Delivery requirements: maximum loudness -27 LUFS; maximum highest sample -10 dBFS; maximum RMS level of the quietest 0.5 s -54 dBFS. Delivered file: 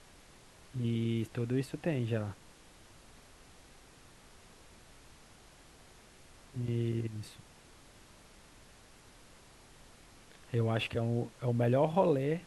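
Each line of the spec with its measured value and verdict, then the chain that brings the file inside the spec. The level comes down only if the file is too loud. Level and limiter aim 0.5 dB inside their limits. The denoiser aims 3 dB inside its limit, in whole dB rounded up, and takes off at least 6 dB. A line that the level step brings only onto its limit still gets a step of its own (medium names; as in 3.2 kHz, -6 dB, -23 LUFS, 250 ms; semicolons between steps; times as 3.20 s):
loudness -33.5 LUFS: pass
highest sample -15.0 dBFS: pass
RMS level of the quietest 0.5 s -58 dBFS: pass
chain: none needed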